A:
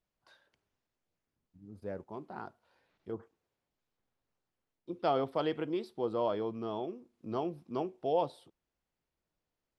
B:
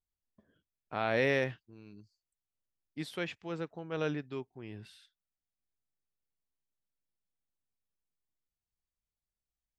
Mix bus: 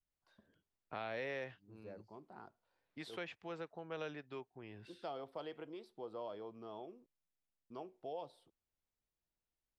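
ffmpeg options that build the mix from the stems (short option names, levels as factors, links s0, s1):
-filter_complex "[0:a]volume=0.266,asplit=3[s0][s1][s2];[s0]atrim=end=7.06,asetpts=PTS-STARTPTS,afade=t=out:st=7.056:d=0.004:c=hsin[s3];[s1]atrim=start=7.06:end=7.7,asetpts=PTS-STARTPTS,volume=0[s4];[s2]atrim=start=7.7,asetpts=PTS-STARTPTS,afade=t=in:d=0.004:c=hsin[s5];[s3][s4][s5]concat=n=3:v=0:a=1[s6];[1:a]lowpass=f=4000:p=1,volume=0.708[s7];[s6][s7]amix=inputs=2:normalize=0,adynamicequalizer=threshold=0.00398:dfrequency=630:dqfactor=1:tfrequency=630:tqfactor=1:attack=5:release=100:ratio=0.375:range=1.5:mode=boostabove:tftype=bell,acrossover=split=470|2300[s8][s9][s10];[s8]acompressor=threshold=0.00251:ratio=4[s11];[s9]acompressor=threshold=0.00631:ratio=4[s12];[s10]acompressor=threshold=0.00316:ratio=4[s13];[s11][s12][s13]amix=inputs=3:normalize=0"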